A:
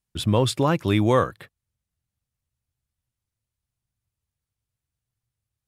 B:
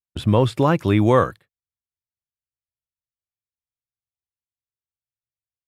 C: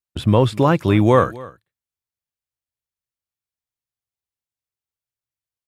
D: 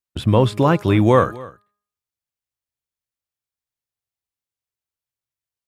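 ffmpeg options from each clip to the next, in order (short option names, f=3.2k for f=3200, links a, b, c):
-filter_complex "[0:a]agate=range=-25dB:threshold=-36dB:ratio=16:detection=peak,acrossover=split=2500[a][b];[b]acompressor=threshold=-41dB:ratio=4:attack=1:release=60[c];[a][c]amix=inputs=2:normalize=0,volume=3.5dB"
-af "aecho=1:1:257:0.0944,volume=2dB"
-af "bandreject=f=205.7:t=h:w=4,bandreject=f=411.4:t=h:w=4,bandreject=f=617.1:t=h:w=4,bandreject=f=822.8:t=h:w=4,bandreject=f=1.0285k:t=h:w=4,bandreject=f=1.2342k:t=h:w=4,bandreject=f=1.4399k:t=h:w=4,bandreject=f=1.6456k:t=h:w=4,bandreject=f=1.8513k:t=h:w=4"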